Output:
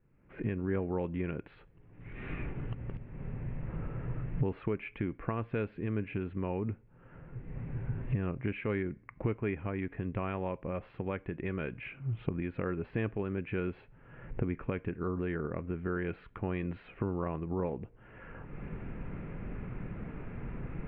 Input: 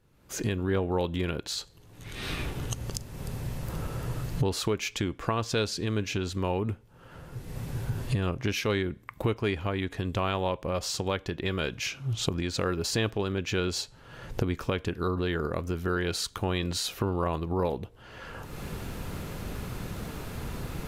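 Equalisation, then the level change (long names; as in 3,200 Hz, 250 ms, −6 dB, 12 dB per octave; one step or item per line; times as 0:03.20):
Butterworth low-pass 2,400 Hz 48 dB per octave
parametric band 76 Hz −8.5 dB 0.94 octaves
parametric band 960 Hz −9 dB 2.9 octaves
0.0 dB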